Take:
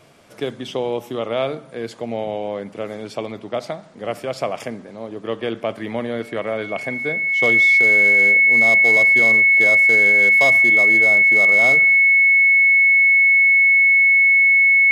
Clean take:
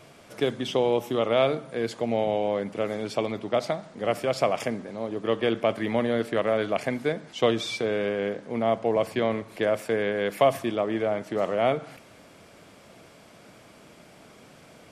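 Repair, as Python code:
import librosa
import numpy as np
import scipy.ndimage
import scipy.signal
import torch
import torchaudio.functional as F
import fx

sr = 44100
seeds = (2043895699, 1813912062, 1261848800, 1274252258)

y = fx.fix_declip(x, sr, threshold_db=-9.0)
y = fx.notch(y, sr, hz=2200.0, q=30.0)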